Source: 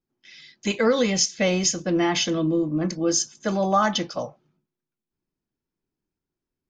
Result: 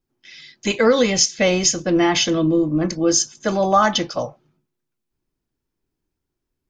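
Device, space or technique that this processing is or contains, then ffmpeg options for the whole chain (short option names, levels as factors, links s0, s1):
low shelf boost with a cut just above: -af "lowshelf=f=98:g=6.5,equalizer=f=190:t=o:w=0.51:g=-5,volume=1.78"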